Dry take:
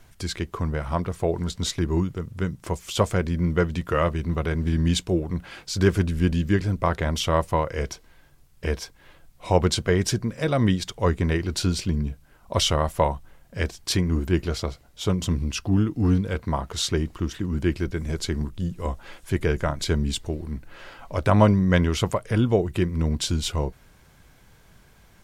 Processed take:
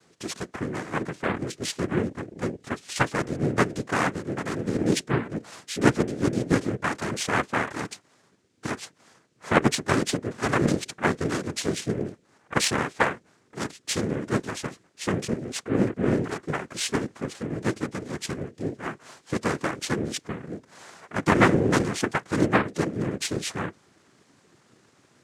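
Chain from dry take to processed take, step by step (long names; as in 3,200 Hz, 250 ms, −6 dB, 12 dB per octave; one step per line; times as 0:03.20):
cochlear-implant simulation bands 3
harmonic generator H 3 −20 dB, 7 −35 dB, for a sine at −3.5 dBFS
level +2 dB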